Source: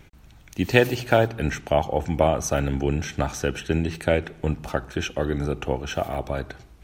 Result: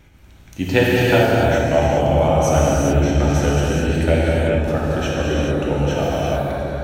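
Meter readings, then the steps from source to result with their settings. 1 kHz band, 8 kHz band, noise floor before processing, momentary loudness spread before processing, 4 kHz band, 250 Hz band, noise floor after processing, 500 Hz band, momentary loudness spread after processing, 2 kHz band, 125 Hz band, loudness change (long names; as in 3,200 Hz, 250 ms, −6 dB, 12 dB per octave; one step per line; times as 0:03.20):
+6.5 dB, +5.0 dB, −50 dBFS, 9 LU, +5.5 dB, +7.5 dB, −45 dBFS, +6.5 dB, 6 LU, +5.5 dB, +8.5 dB, +7.0 dB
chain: on a send: feedback echo with a low-pass in the loop 199 ms, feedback 78%, low-pass 1,100 Hz, level −5.5 dB
on the sum: reverb whose tail is shaped and stops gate 460 ms flat, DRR −5.5 dB
level −1.5 dB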